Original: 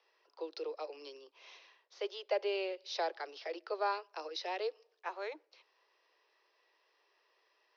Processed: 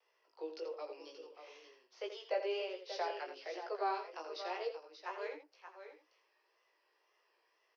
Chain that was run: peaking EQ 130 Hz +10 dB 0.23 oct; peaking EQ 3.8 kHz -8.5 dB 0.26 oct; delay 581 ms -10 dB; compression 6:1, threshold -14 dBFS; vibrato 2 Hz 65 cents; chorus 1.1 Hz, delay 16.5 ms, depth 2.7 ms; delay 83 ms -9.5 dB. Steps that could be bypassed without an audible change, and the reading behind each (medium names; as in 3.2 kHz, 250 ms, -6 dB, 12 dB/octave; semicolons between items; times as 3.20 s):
peaking EQ 130 Hz: input has nothing below 290 Hz; compression, threshold -14 dBFS: peak at its input -22.0 dBFS